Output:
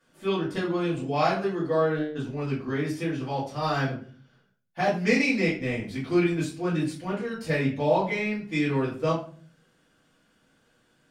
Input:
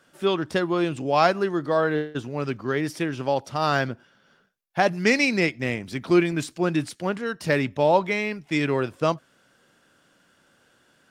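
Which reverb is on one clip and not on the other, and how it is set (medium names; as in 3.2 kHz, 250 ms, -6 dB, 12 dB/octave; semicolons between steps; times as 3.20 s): simulated room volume 32 m³, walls mixed, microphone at 1.7 m; trim -14 dB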